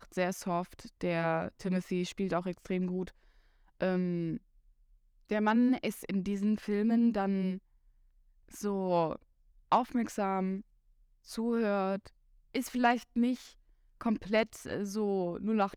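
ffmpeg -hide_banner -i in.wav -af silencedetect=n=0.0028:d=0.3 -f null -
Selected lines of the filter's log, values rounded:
silence_start: 3.11
silence_end: 3.81 | silence_duration: 0.70
silence_start: 4.38
silence_end: 5.29 | silence_duration: 0.91
silence_start: 7.59
silence_end: 8.49 | silence_duration: 0.90
silence_start: 9.16
silence_end: 9.72 | silence_duration: 0.56
silence_start: 10.61
silence_end: 11.26 | silence_duration: 0.65
silence_start: 12.08
silence_end: 12.55 | silence_duration: 0.46
silence_start: 13.52
silence_end: 14.01 | silence_duration: 0.49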